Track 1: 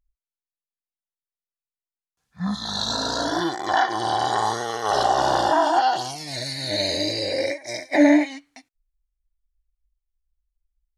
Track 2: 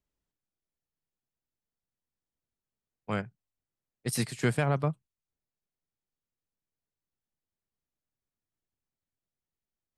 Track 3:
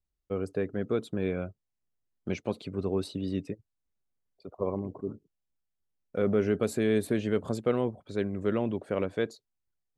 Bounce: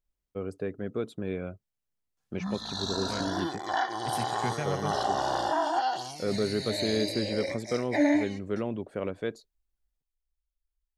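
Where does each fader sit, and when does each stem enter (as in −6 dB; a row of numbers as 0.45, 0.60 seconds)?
−8.5, −6.5, −3.0 decibels; 0.00, 0.00, 0.05 seconds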